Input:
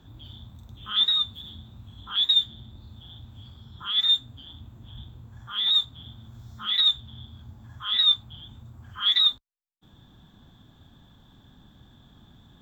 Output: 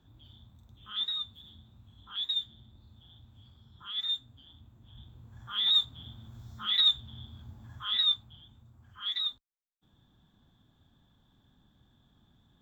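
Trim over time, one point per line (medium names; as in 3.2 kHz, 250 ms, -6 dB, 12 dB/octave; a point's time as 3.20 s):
4.82 s -11 dB
5.54 s -3 dB
7.78 s -3 dB
8.53 s -12 dB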